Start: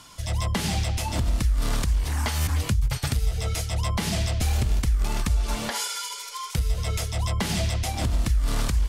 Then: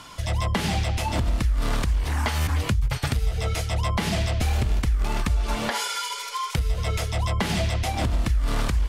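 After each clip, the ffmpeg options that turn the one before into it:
-filter_complex "[0:a]bass=f=250:g=-3,treble=f=4000:g=-8,asplit=2[s0][s1];[s1]acompressor=threshold=0.0224:ratio=6,volume=1.33[s2];[s0][s2]amix=inputs=2:normalize=0"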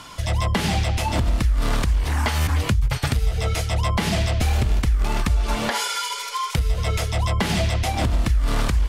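-af "aeval=exprs='0.188*(abs(mod(val(0)/0.188+3,4)-2)-1)':c=same,volume=1.41"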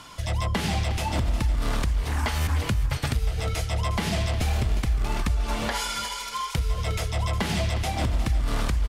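-af "aecho=1:1:359|718|1077:0.237|0.0711|0.0213,volume=0.596"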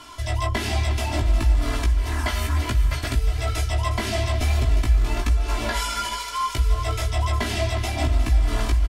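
-af "flanger=delay=16:depth=2.2:speed=1.1,aecho=1:1:3:0.9,aecho=1:1:439:0.188,volume=1.33"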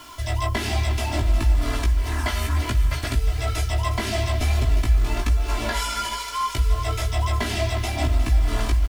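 -af "acrusher=bits=7:mix=0:aa=0.000001"

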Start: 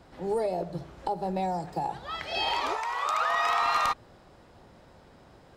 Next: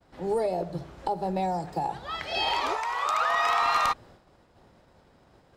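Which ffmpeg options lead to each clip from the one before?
-af "agate=range=0.0224:threshold=0.00398:ratio=3:detection=peak,volume=1.19"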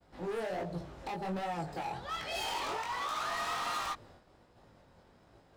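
-af "asoftclip=type=hard:threshold=0.0266,flanger=delay=17.5:depth=6.1:speed=1.3"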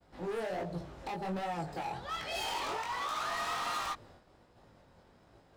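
-af anull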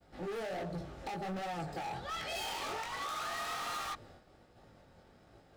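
-af "asoftclip=type=hard:threshold=0.0141,asuperstop=centerf=1000:order=4:qfactor=7.7,volume=1.12"

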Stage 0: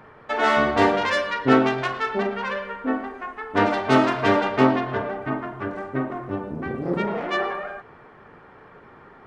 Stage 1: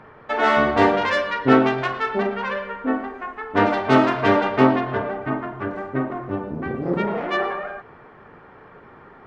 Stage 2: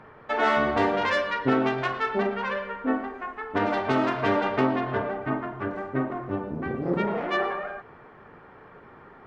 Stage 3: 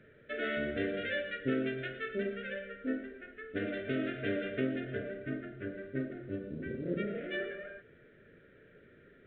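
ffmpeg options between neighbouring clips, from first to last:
-af "highshelf=f=6600:g=-12,volume=1.26"
-af "alimiter=limit=0.355:level=0:latency=1:release=193,volume=0.708"
-af "acrusher=bits=10:mix=0:aa=0.000001,asuperstop=centerf=940:order=8:qfactor=1.1,volume=0.376" -ar 8000 -c:a pcm_mulaw

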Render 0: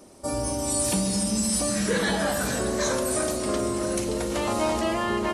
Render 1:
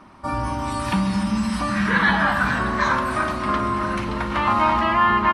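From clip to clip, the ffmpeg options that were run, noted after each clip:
-af "firequalizer=gain_entry='entry(200,0);entry(470,-14);entry(1000,9);entry(7000,-22)':delay=0.05:min_phase=1,volume=1.88"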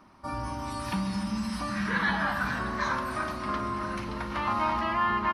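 -af "aexciter=amount=1.3:drive=5.6:freq=4500,volume=0.355"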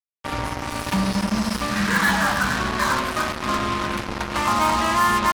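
-af "acrusher=bits=4:mix=0:aa=0.5,volume=2.37"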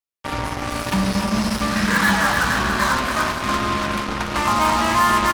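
-af "aecho=1:1:288|475:0.422|0.282,volume=1.19"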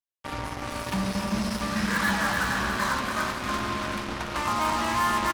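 -af "aecho=1:1:383:0.376,volume=0.398"

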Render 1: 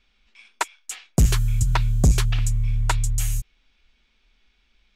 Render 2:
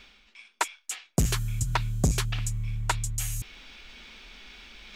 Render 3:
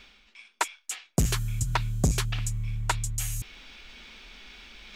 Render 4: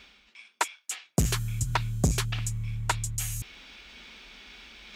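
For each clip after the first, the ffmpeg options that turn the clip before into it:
-af "lowshelf=f=90:g=-10.5,areverse,acompressor=mode=upward:threshold=0.0501:ratio=2.5,areverse,volume=0.75"
-af anull
-af "highpass=47"

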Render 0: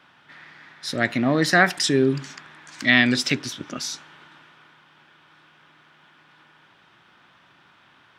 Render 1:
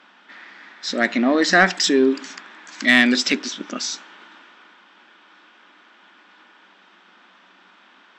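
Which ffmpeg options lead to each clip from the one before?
-af "afftfilt=real='re*between(b*sr/4096,180,8000)':imag='im*between(b*sr/4096,180,8000)':win_size=4096:overlap=0.75,acontrast=43,volume=0.794"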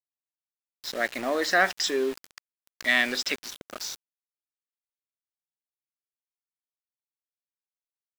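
-af "lowshelf=f=350:t=q:w=1.5:g=-8,aeval=exprs='val(0)*gte(abs(val(0)),0.0422)':c=same,volume=0.422"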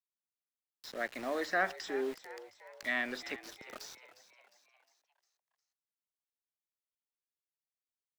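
-filter_complex "[0:a]acrossover=split=150|780|2200[s0][s1][s2][s3];[s3]acompressor=threshold=0.0112:ratio=4[s4];[s0][s1][s2][s4]amix=inputs=4:normalize=0,asplit=6[s5][s6][s7][s8][s9][s10];[s6]adelay=356,afreqshift=87,volume=0.168[s11];[s7]adelay=712,afreqshift=174,volume=0.0841[s12];[s8]adelay=1068,afreqshift=261,volume=0.0422[s13];[s9]adelay=1424,afreqshift=348,volume=0.0209[s14];[s10]adelay=1780,afreqshift=435,volume=0.0105[s15];[s5][s11][s12][s13][s14][s15]amix=inputs=6:normalize=0,volume=0.376"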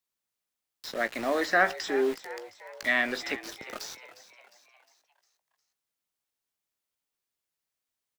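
-filter_complex "[0:a]asplit=2[s0][s1];[s1]adelay=18,volume=0.224[s2];[s0][s2]amix=inputs=2:normalize=0,volume=2.51"

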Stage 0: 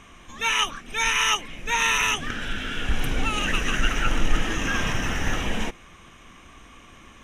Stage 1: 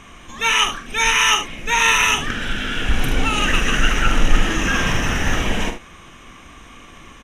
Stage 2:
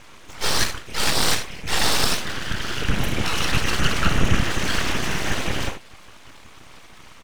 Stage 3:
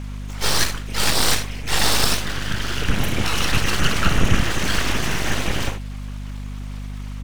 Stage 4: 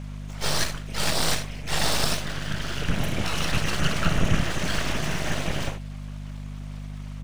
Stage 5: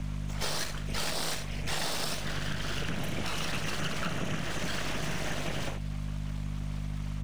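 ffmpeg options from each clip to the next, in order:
-af "aecho=1:1:44|75:0.355|0.282,volume=1.88"
-af "afftfilt=real='hypot(re,im)*cos(2*PI*random(0))':imag='hypot(re,im)*sin(2*PI*random(1))':win_size=512:overlap=0.75,aeval=exprs='abs(val(0))':c=same,volume=1.68"
-af "highshelf=f=9800:g=4.5,aeval=exprs='val(0)+0.0316*(sin(2*PI*50*n/s)+sin(2*PI*2*50*n/s)/2+sin(2*PI*3*50*n/s)/3+sin(2*PI*4*50*n/s)/4+sin(2*PI*5*50*n/s)/5)':c=same,volume=1.12"
-af "equalizer=f=160:t=o:w=0.33:g=8,equalizer=f=630:t=o:w=0.33:g=7,equalizer=f=16000:t=o:w=0.33:g=-10,volume=0.501"
-filter_complex "[0:a]acrossover=split=120|700|4800[s0][s1][s2][s3];[s0]asoftclip=type=hard:threshold=0.0562[s4];[s4][s1][s2][s3]amix=inputs=4:normalize=0,acompressor=threshold=0.0316:ratio=6,volume=1.19"

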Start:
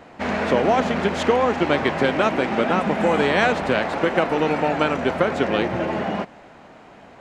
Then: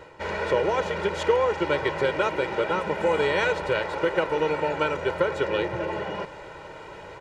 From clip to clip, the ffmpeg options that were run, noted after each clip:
-af "aecho=1:1:2.1:0.96,areverse,acompressor=mode=upward:threshold=0.0708:ratio=2.5,areverse,volume=0.422"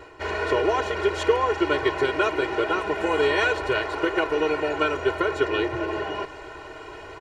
-af "aecho=1:1:2.8:0.82"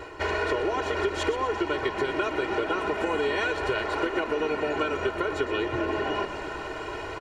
-filter_complex "[0:a]acompressor=threshold=0.0355:ratio=6,asplit=7[s0][s1][s2][s3][s4][s5][s6];[s1]adelay=122,afreqshift=-46,volume=0.251[s7];[s2]adelay=244,afreqshift=-92,volume=0.141[s8];[s3]adelay=366,afreqshift=-138,volume=0.0785[s9];[s4]adelay=488,afreqshift=-184,volume=0.0442[s10];[s5]adelay=610,afreqshift=-230,volume=0.0248[s11];[s6]adelay=732,afreqshift=-276,volume=0.0138[s12];[s0][s7][s8][s9][s10][s11][s12]amix=inputs=7:normalize=0,volume=1.68"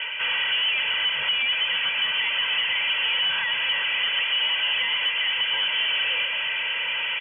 -filter_complex "[0:a]asplit=2[s0][s1];[s1]highpass=f=720:p=1,volume=22.4,asoftclip=type=tanh:threshold=0.224[s2];[s0][s2]amix=inputs=2:normalize=0,lowpass=f=1000:p=1,volume=0.501,lowpass=f=2900:t=q:w=0.5098,lowpass=f=2900:t=q:w=0.6013,lowpass=f=2900:t=q:w=0.9,lowpass=f=2900:t=q:w=2.563,afreqshift=-3400,volume=0.794"

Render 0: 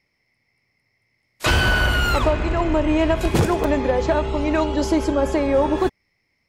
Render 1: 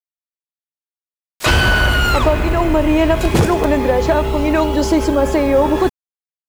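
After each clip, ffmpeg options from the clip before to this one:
-filter_complex "[0:a]asplit=2[s0][s1];[s1]alimiter=limit=0.0891:level=0:latency=1,volume=0.891[s2];[s0][s2]amix=inputs=2:normalize=0,acrusher=bits=6:mix=0:aa=0.000001,volume=1.33"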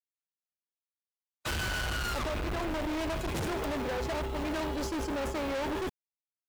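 -af "agate=range=0.00126:threshold=0.158:ratio=16:detection=peak,asoftclip=type=hard:threshold=0.0668,volume=0.398"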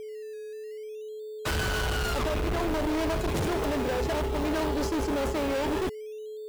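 -filter_complex "[0:a]aeval=exprs='val(0)+0.00891*sin(2*PI*430*n/s)':c=same,asplit=2[s0][s1];[s1]acrusher=samples=16:mix=1:aa=0.000001:lfo=1:lforange=9.6:lforate=0.58,volume=0.447[s2];[s0][s2]amix=inputs=2:normalize=0,volume=1.26"

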